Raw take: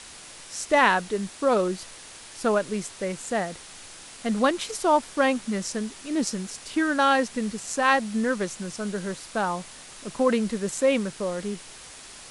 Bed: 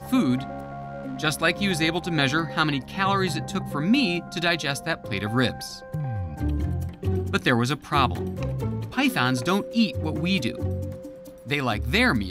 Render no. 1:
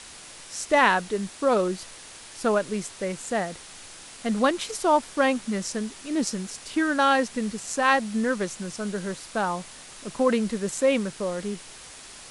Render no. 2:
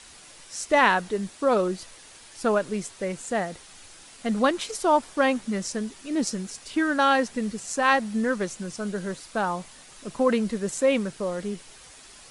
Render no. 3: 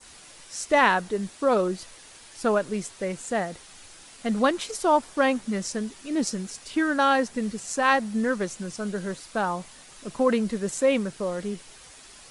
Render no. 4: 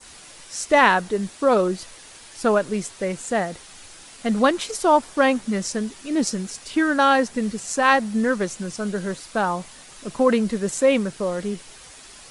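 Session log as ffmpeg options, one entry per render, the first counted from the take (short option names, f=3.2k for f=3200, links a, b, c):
-af anull
-af "afftdn=nr=6:nf=-45"
-af "adynamicequalizer=threshold=0.0158:dfrequency=2900:dqfactor=0.81:tfrequency=2900:tqfactor=0.81:attack=5:release=100:ratio=0.375:range=2:mode=cutabove:tftype=bell"
-af "volume=4dB"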